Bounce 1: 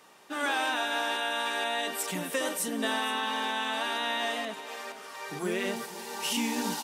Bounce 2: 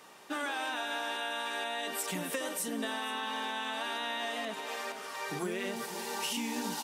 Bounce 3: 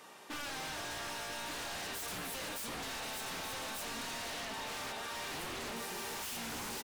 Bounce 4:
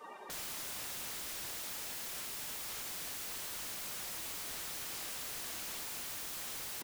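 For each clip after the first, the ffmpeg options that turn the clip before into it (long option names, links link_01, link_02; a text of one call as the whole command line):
ffmpeg -i in.wav -af "acompressor=threshold=-34dB:ratio=6,volume=2dB" out.wav
ffmpeg -i in.wav -af "aecho=1:1:1184:0.501,aeval=exprs='0.015*(abs(mod(val(0)/0.015+3,4)-2)-1)':channel_layout=same" out.wav
ffmpeg -i in.wav -af "afftdn=noise_reduction=19:noise_floor=-51,aeval=exprs='(mod(251*val(0)+1,2)-1)/251':channel_layout=same,volume=10dB" out.wav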